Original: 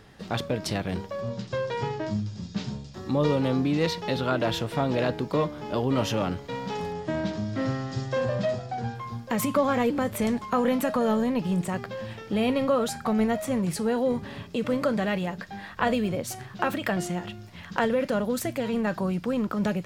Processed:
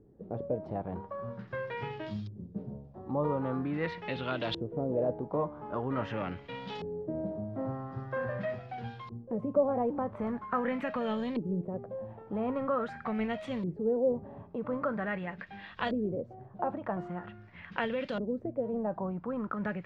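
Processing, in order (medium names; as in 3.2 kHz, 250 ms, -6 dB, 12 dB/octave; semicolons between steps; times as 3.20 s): LFO low-pass saw up 0.44 Hz 350–3900 Hz; short-mantissa float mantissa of 8-bit; trim -9 dB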